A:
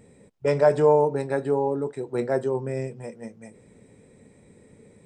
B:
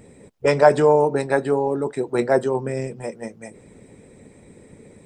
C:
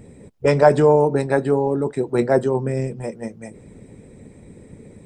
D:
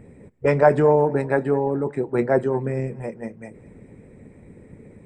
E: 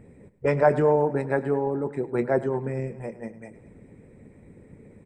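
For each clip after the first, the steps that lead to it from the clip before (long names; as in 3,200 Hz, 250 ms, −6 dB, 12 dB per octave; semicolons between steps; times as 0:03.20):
harmonic and percussive parts rebalanced percussive +8 dB; level +2 dB
low-shelf EQ 300 Hz +9 dB; level −1.5 dB
high shelf with overshoot 2,900 Hz −8.5 dB, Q 1.5; feedback echo with a swinging delay time 211 ms, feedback 41%, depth 86 cents, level −22 dB; level −2.5 dB
repeating echo 104 ms, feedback 38%, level −16.5 dB; level −4 dB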